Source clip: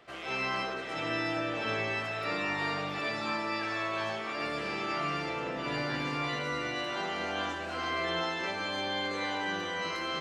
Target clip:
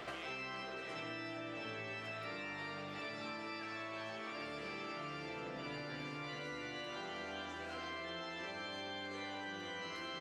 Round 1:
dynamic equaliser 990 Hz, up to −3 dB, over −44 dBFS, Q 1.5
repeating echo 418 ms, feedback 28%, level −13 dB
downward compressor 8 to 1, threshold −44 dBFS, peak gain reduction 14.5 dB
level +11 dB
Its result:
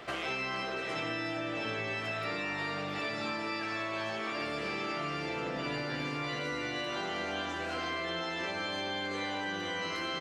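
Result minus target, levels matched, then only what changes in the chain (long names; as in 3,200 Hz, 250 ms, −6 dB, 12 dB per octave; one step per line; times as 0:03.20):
downward compressor: peak gain reduction −9 dB
change: downward compressor 8 to 1, threshold −54.5 dBFS, peak gain reduction 23.5 dB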